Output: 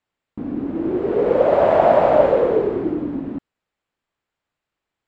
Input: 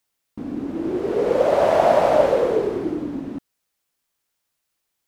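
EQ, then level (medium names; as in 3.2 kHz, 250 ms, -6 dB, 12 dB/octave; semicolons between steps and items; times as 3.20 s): resonant low-pass 7.4 kHz, resonance Q 6.8; distance through air 430 m; +3.5 dB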